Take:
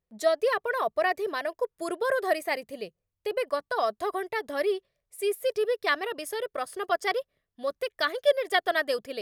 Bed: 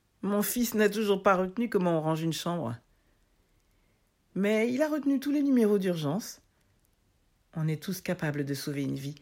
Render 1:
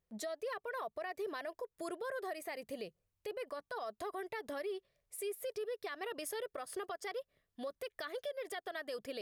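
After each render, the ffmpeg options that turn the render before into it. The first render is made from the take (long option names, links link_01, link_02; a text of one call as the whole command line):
ffmpeg -i in.wav -af "acompressor=threshold=-33dB:ratio=6,alimiter=level_in=9dB:limit=-24dB:level=0:latency=1:release=93,volume=-9dB" out.wav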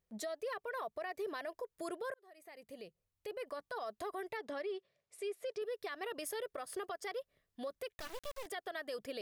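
ffmpeg -i in.wav -filter_complex "[0:a]asettb=1/sr,asplit=3[link_01][link_02][link_03];[link_01]atrim=end=4.374[link_04];[link_02]atrim=start=4.37:end=5.62,asetpts=PTS-STARTPTS,afade=type=in:duration=0.004:curve=qsin,afade=type=out:start_time=1.246:duration=0.004:curve=qsin,highpass=140,lowpass=6000[link_05];[link_03]atrim=start=5.616[link_06];[link_04][link_05]acrossfade=duration=0.004:curve1=hsin:curve2=qsin[link_07];[link_07][link_06]acrossfade=duration=0.004:curve1=qsin:curve2=hsin,asettb=1/sr,asplit=3[link_08][link_09][link_10];[link_08]atrim=end=7.934[link_11];[link_09]atrim=start=7.93:end=8.46,asetpts=PTS-STARTPTS,afade=type=in:duration=0.004:curve=qsin,afade=type=out:start_time=0.526:duration=0.004:curve=qsin,acrusher=bits=5:dc=4:mix=0:aa=0.000001[link_12];[link_10]atrim=start=8.456[link_13];[link_11][link_12]acrossfade=duration=0.004:curve1=hsin:curve2=qsin[link_14];[link_14][link_13]acrossfade=duration=0.004:curve1=qsin:curve2=hsin,asplit=2[link_15][link_16];[link_15]atrim=end=2.14,asetpts=PTS-STARTPTS,afade=type=out:start_time=2.136:duration=0.004:curve=hsin[link_17];[link_16]atrim=start=2.14,asetpts=PTS-STARTPTS,afade=type=in:duration=1.39[link_18];[link_17][link_18]concat=n=2:v=0:a=1" out.wav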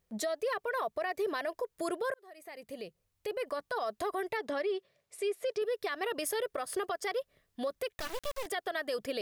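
ffmpeg -i in.wav -af "volume=7.5dB" out.wav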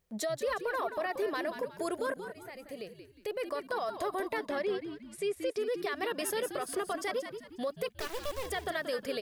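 ffmpeg -i in.wav -filter_complex "[0:a]asplit=5[link_01][link_02][link_03][link_04][link_05];[link_02]adelay=180,afreqshift=-79,volume=-9dB[link_06];[link_03]adelay=360,afreqshift=-158,volume=-17.4dB[link_07];[link_04]adelay=540,afreqshift=-237,volume=-25.8dB[link_08];[link_05]adelay=720,afreqshift=-316,volume=-34.2dB[link_09];[link_01][link_06][link_07][link_08][link_09]amix=inputs=5:normalize=0" out.wav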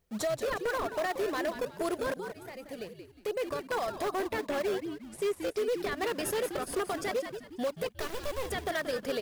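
ffmpeg -i in.wav -filter_complex "[0:a]asplit=2[link_01][link_02];[link_02]acrusher=samples=25:mix=1:aa=0.000001:lfo=1:lforange=40:lforate=2.6,volume=-6dB[link_03];[link_01][link_03]amix=inputs=2:normalize=0,aeval=exprs='0.0596*(abs(mod(val(0)/0.0596+3,4)-2)-1)':channel_layout=same" out.wav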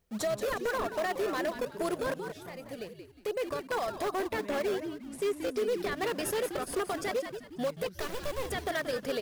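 ffmpeg -i in.wav -i bed.wav -filter_complex "[1:a]volume=-19.5dB[link_01];[0:a][link_01]amix=inputs=2:normalize=0" out.wav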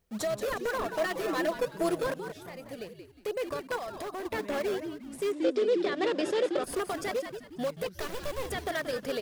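ffmpeg -i in.wav -filter_complex "[0:a]asettb=1/sr,asplit=3[link_01][link_02][link_03];[link_01]atrim=end=0.874[link_04];[link_02]atrim=start=0.87:end=2.07,asetpts=PTS-STARTPTS,afade=type=in:duration=0.004:curve=qsin,afade=type=out:start_time=1.196:duration=0.004:curve=qsin,aecho=1:1:6.1:0.77,atrim=end_sample=52920[link_05];[link_03]atrim=start=2.066[link_06];[link_04][link_05]acrossfade=duration=0.004:curve1=hsin:curve2=qsin[link_07];[link_07][link_06]acrossfade=duration=0.004:curve1=qsin:curve2=hsin,asettb=1/sr,asplit=3[link_08][link_09][link_10];[link_08]atrim=end=3.764[link_11];[link_09]atrim=start=3.76:end=4.25,asetpts=PTS-STARTPTS,afade=type=in:duration=0.004:curve=qsin,afade=type=out:start_time=0.486:duration=0.004:curve=qsin,acompressor=threshold=-36dB:ratio=2.5:attack=3.2:release=140:knee=1:detection=peak[link_12];[link_10]atrim=start=4.246[link_13];[link_11][link_12]acrossfade=duration=0.004:curve1=hsin:curve2=qsin[link_14];[link_14][link_13]acrossfade=duration=0.004:curve1=qsin:curve2=hsin,asettb=1/sr,asplit=3[link_15][link_16][link_17];[link_15]atrim=end=5.324[link_18];[link_16]atrim=start=5.32:end=6.64,asetpts=PTS-STARTPTS,afade=type=in:duration=0.004:curve=qsin,afade=type=out:start_time=1.316:duration=0.004:curve=qsin,highpass=200,equalizer=frequency=330:width_type=q:width=4:gain=10,equalizer=frequency=550:width_type=q:width=4:gain=7,equalizer=frequency=3500:width_type=q:width=4:gain=5,equalizer=frequency=6200:width_type=q:width=4:gain=-4,lowpass=frequency=7200:width=0.5412,lowpass=frequency=7200:width=1.3066[link_19];[link_17]atrim=start=6.636[link_20];[link_18][link_19]acrossfade=duration=0.004:curve1=hsin:curve2=qsin[link_21];[link_21][link_20]acrossfade=duration=0.004:curve1=qsin:curve2=hsin" out.wav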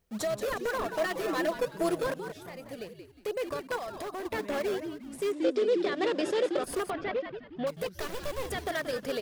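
ffmpeg -i in.wav -filter_complex "[0:a]asettb=1/sr,asplit=3[link_01][link_02][link_03];[link_01]atrim=end=6.904[link_04];[link_02]atrim=start=6.9:end=7.67,asetpts=PTS-STARTPTS,afade=type=in:duration=0.004:curve=qsin,afade=type=out:start_time=0.766:duration=0.004:curve=qsin,lowpass=frequency=3400:width=0.5412,lowpass=frequency=3400:width=1.3066[link_05];[link_03]atrim=start=7.666[link_06];[link_04][link_05]acrossfade=duration=0.004:curve1=hsin:curve2=qsin[link_07];[link_07][link_06]acrossfade=duration=0.004:curve1=qsin:curve2=hsin" out.wav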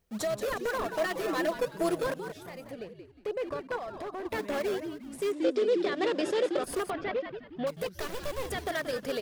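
ffmpeg -i in.wav -filter_complex "[0:a]asettb=1/sr,asplit=3[link_01][link_02][link_03];[link_01]atrim=end=2.714[link_04];[link_02]atrim=start=2.71:end=4.29,asetpts=PTS-STARTPTS,afade=type=in:duration=0.004:curve=qsin,afade=type=out:start_time=1.576:duration=0.004:curve=qsin,aemphasis=mode=reproduction:type=75kf[link_05];[link_03]atrim=start=4.286[link_06];[link_04][link_05]acrossfade=duration=0.004:curve1=hsin:curve2=qsin[link_07];[link_07][link_06]acrossfade=duration=0.004:curve1=qsin:curve2=hsin" out.wav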